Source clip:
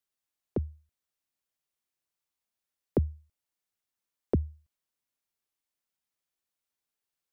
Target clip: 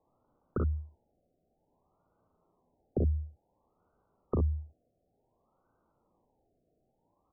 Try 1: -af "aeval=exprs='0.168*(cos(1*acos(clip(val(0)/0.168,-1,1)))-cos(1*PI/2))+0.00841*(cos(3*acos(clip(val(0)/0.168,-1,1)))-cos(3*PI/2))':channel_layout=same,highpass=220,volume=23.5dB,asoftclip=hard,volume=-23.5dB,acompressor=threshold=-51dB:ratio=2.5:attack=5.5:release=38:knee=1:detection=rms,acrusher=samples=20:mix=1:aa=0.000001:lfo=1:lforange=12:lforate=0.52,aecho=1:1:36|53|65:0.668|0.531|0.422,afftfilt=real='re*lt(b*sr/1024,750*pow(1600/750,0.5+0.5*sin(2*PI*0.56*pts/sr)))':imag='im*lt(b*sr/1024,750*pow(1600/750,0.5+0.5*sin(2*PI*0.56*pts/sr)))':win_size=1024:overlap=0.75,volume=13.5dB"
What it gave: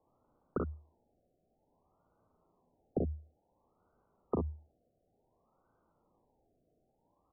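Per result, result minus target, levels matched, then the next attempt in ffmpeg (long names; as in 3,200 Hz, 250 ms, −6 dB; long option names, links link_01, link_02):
gain into a clipping stage and back: distortion +19 dB; 250 Hz band +3.5 dB
-af "aeval=exprs='0.168*(cos(1*acos(clip(val(0)/0.168,-1,1)))-cos(1*PI/2))+0.00841*(cos(3*acos(clip(val(0)/0.168,-1,1)))-cos(3*PI/2))':channel_layout=same,highpass=220,volume=17dB,asoftclip=hard,volume=-17dB,acompressor=threshold=-51dB:ratio=2.5:attack=5.5:release=38:knee=1:detection=rms,acrusher=samples=20:mix=1:aa=0.000001:lfo=1:lforange=12:lforate=0.52,aecho=1:1:36|53|65:0.668|0.531|0.422,afftfilt=real='re*lt(b*sr/1024,750*pow(1600/750,0.5+0.5*sin(2*PI*0.56*pts/sr)))':imag='im*lt(b*sr/1024,750*pow(1600/750,0.5+0.5*sin(2*PI*0.56*pts/sr)))':win_size=1024:overlap=0.75,volume=13.5dB"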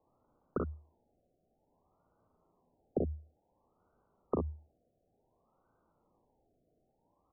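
250 Hz band +3.0 dB
-af "aeval=exprs='0.168*(cos(1*acos(clip(val(0)/0.168,-1,1)))-cos(1*PI/2))+0.00841*(cos(3*acos(clip(val(0)/0.168,-1,1)))-cos(3*PI/2))':channel_layout=same,volume=17dB,asoftclip=hard,volume=-17dB,acompressor=threshold=-51dB:ratio=2.5:attack=5.5:release=38:knee=1:detection=rms,acrusher=samples=20:mix=1:aa=0.000001:lfo=1:lforange=12:lforate=0.52,aecho=1:1:36|53|65:0.668|0.531|0.422,afftfilt=real='re*lt(b*sr/1024,750*pow(1600/750,0.5+0.5*sin(2*PI*0.56*pts/sr)))':imag='im*lt(b*sr/1024,750*pow(1600/750,0.5+0.5*sin(2*PI*0.56*pts/sr)))':win_size=1024:overlap=0.75,volume=13.5dB"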